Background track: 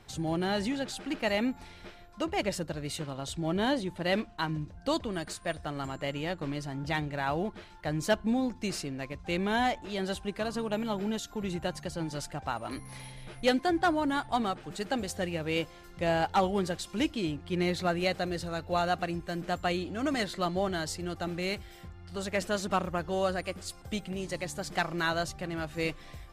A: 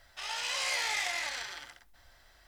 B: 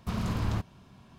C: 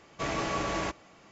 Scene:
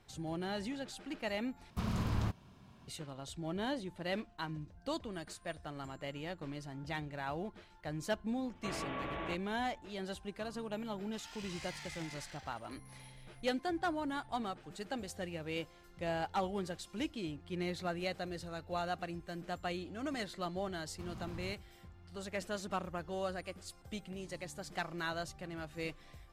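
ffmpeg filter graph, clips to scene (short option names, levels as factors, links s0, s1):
-filter_complex "[2:a]asplit=2[s0][s1];[0:a]volume=0.355[s2];[3:a]aresample=8000,aresample=44100[s3];[1:a]highpass=690[s4];[s2]asplit=2[s5][s6];[s5]atrim=end=1.704[s7];[s0]atrim=end=1.18,asetpts=PTS-STARTPTS,volume=0.596[s8];[s6]atrim=start=2.876[s9];[s3]atrim=end=1.31,asetpts=PTS-STARTPTS,volume=0.335,afade=t=in:d=0.004:c=hsin,afade=t=out:st=1.306:d=0.004:c=hsin,adelay=8440[s10];[s4]atrim=end=2.47,asetpts=PTS-STARTPTS,volume=0.15,afade=t=in:d=0.004:c=hsin,afade=t=out:st=2.466:d=0.004:c=hsin,adelay=10950[s11];[s1]atrim=end=1.18,asetpts=PTS-STARTPTS,volume=0.141,afade=t=in:d=0.004:c=hsin,afade=t=out:st=1.176:d=0.004:c=hsin,adelay=20920[s12];[s7][s8]acrossfade=d=0.004:c1=hsin:c2=hsin[s13];[s13][s9]acrossfade=d=0.004:c1=hsin:c2=hsin[s14];[s14][s10][s11][s12]amix=inputs=4:normalize=0"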